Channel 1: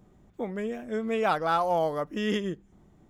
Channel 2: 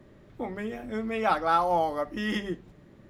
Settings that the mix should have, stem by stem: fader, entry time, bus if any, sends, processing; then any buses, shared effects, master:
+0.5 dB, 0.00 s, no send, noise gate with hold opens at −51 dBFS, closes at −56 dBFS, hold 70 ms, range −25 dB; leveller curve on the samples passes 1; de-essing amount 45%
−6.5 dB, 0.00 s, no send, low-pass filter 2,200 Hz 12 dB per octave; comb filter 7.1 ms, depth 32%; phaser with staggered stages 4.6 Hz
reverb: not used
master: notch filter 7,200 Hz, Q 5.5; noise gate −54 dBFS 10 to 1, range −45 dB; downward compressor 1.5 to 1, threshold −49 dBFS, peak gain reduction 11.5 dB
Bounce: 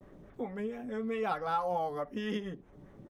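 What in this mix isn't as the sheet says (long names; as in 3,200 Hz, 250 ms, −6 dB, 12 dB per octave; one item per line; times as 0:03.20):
stem 1: missing leveller curve on the samples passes 1
stem 2 −6.5 dB → +2.0 dB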